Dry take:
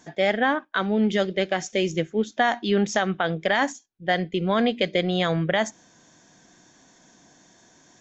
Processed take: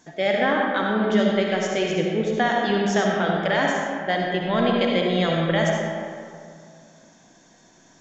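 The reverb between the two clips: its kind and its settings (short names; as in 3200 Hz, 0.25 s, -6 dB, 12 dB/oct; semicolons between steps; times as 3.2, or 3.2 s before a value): digital reverb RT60 2.3 s, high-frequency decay 0.5×, pre-delay 25 ms, DRR -1.5 dB; gain -2 dB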